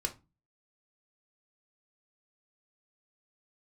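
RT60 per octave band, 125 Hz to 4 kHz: 0.50, 0.45, 0.25, 0.25, 0.20, 0.20 s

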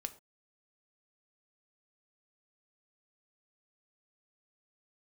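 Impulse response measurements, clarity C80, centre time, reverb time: 19.5 dB, 4 ms, not exponential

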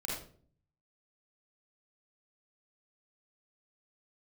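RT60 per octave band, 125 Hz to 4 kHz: 0.95, 0.75, 0.55, 0.40, 0.35, 0.35 s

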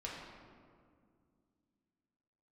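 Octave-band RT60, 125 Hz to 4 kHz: 3.0, 3.3, 2.4, 1.9, 1.5, 1.1 s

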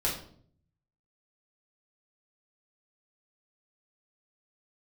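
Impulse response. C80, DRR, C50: 10.5 dB, -6.0 dB, 6.5 dB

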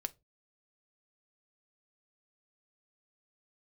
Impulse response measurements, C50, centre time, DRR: 25.5 dB, 2 ms, 9.5 dB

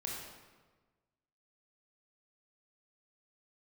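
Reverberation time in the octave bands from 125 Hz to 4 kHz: 1.6, 1.5, 1.4, 1.3, 1.1, 0.95 s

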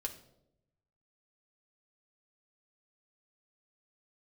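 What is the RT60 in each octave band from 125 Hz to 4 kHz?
1.4, 1.1, 1.0, 0.70, 0.50, 0.55 s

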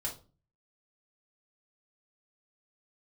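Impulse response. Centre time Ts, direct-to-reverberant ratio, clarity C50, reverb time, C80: 17 ms, -4.0 dB, 10.0 dB, 0.35 s, 18.0 dB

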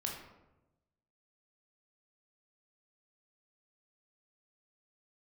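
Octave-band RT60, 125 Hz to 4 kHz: 1.4, 1.2, 1.1, 0.90, 0.70, 0.55 s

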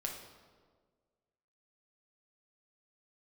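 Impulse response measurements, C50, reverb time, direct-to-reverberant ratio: 5.0 dB, 1.6 s, 0.5 dB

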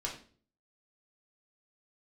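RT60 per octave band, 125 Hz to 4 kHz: 0.65, 0.60, 0.50, 0.40, 0.40, 0.40 s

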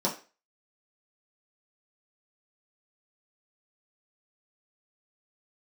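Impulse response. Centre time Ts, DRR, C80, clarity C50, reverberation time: 21 ms, -5.5 dB, 16.0 dB, 11.0 dB, 0.35 s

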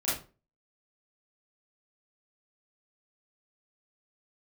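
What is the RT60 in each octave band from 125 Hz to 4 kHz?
0.45, 0.40, 0.40, 0.30, 0.25, 0.25 s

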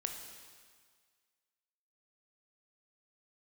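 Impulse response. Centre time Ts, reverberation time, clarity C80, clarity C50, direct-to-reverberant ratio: 44 ms, 1.7 s, 7.0 dB, 5.5 dB, 3.5 dB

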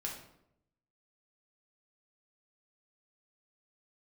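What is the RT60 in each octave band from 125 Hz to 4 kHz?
1.1, 0.95, 0.85, 0.70, 0.60, 0.50 s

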